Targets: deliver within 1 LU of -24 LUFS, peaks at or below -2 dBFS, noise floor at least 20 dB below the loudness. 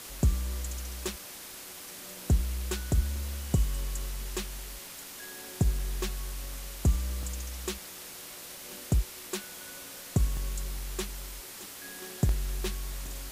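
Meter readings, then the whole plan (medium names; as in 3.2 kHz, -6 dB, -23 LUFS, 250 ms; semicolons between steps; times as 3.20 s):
dropouts 8; longest dropout 2.0 ms; noise floor -45 dBFS; noise floor target -54 dBFS; loudness -34.0 LUFS; peak level -16.0 dBFS; loudness target -24.0 LUFS
-> interpolate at 1.08/3.16/3.99/5.79/7.23/10.37/12.29/13.06 s, 2 ms; noise print and reduce 9 dB; trim +10 dB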